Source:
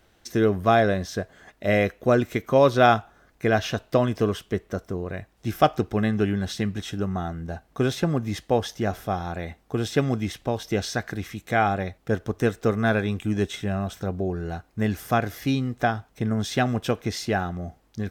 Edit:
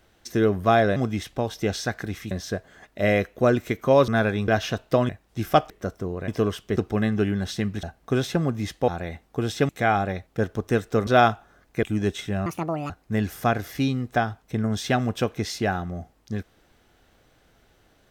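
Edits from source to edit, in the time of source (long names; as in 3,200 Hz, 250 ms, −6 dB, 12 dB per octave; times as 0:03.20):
0:02.73–0:03.49: swap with 0:12.78–0:13.18
0:04.10–0:04.59: swap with 0:05.17–0:05.78
0:06.84–0:07.51: remove
0:08.56–0:09.24: remove
0:10.05–0:11.40: move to 0:00.96
0:13.81–0:14.57: play speed 173%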